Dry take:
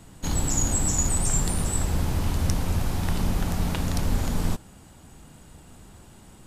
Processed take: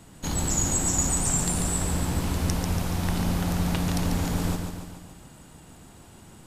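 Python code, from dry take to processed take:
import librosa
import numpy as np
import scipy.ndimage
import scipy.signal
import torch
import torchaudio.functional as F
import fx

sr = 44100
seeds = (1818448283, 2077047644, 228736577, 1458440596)

y = fx.low_shelf(x, sr, hz=64.0, db=-7.5)
y = fx.echo_feedback(y, sr, ms=142, feedback_pct=56, wet_db=-6)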